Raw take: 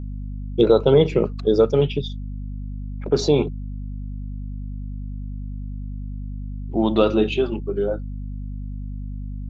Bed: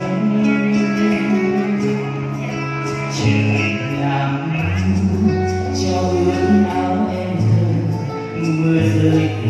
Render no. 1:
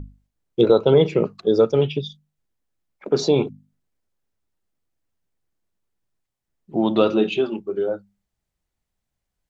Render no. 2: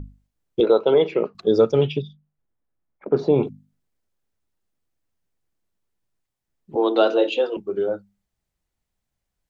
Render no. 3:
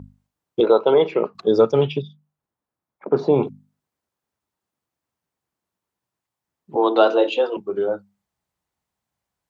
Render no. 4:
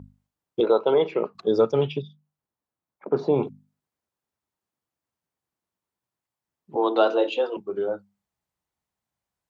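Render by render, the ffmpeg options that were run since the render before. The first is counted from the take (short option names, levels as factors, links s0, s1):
-af "bandreject=f=50:t=h:w=6,bandreject=f=100:t=h:w=6,bandreject=f=150:t=h:w=6,bandreject=f=200:t=h:w=6,bandreject=f=250:t=h:w=6"
-filter_complex "[0:a]asettb=1/sr,asplit=3[s0][s1][s2];[s0]atrim=end=0.604[s3];[s1]atrim=start=0.6:end=1.35,asetpts=PTS-STARTPTS,afade=t=in:d=0.004:c=qsin,afade=t=out:st=0.746:d=0.004:c=qsin,highpass=340,lowpass=3600[s4];[s2]atrim=start=1.346[s5];[s3][s4]acrossfade=d=0.004:c1=hsin:c2=qsin[s6];[s6][s5]acrossfade=d=0.004:c1=qsin:c2=hsin,asettb=1/sr,asplit=3[s7][s8][s9];[s7]atrim=end=2.024[s10];[s8]atrim=start=2.02:end=3.43,asetpts=PTS-STARTPTS,afade=t=in:d=0.004:c=qsin,afade=t=out:st=1.406:d=0.004:c=qsin,lowpass=1600[s11];[s9]atrim=start=3.426[s12];[s10][s11]acrossfade=d=0.004:c1=hsin:c2=qsin[s13];[s13][s12]acrossfade=d=0.004:c1=qsin:c2=hsin,asettb=1/sr,asplit=3[s14][s15][s16];[s14]atrim=end=6.754[s17];[s15]atrim=start=6.75:end=7.57,asetpts=PTS-STARTPTS,afade=t=in:d=0.004:c=qsin,afade=t=out:st=0.816:d=0.004:c=qsin,afreqshift=120[s18];[s16]atrim=start=7.566[s19];[s17][s18]acrossfade=d=0.004:c1=hsin:c2=qsin[s20];[s20][s19]acrossfade=d=0.004:c1=qsin:c2=hsin"
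-af "highpass=89,equalizer=f=980:t=o:w=0.99:g=7"
-af "volume=0.596"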